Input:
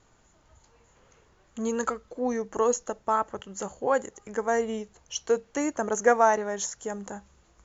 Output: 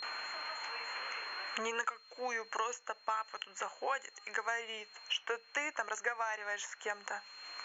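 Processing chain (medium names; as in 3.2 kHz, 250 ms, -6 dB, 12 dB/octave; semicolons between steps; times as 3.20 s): gate with hold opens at -54 dBFS; high-pass 1.3 kHz 12 dB/octave; resonant high shelf 3.4 kHz -7.5 dB, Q 3; compression, threshold -27 dBFS, peak gain reduction 6.5 dB; whistle 4.2 kHz -63 dBFS; three bands compressed up and down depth 100%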